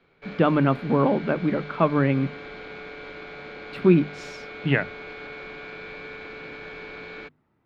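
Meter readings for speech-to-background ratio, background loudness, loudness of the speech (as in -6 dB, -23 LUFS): 15.5 dB, -38.5 LUFS, -23.0 LUFS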